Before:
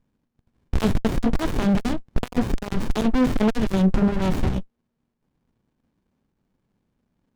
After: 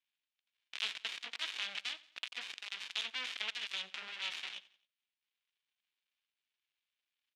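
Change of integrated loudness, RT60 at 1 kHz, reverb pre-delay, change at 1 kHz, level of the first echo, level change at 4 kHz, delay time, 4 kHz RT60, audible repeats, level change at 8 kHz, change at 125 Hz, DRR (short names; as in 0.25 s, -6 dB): -16.5 dB, none, none, -21.0 dB, -19.5 dB, +1.0 dB, 89 ms, none, 3, -9.5 dB, under -40 dB, none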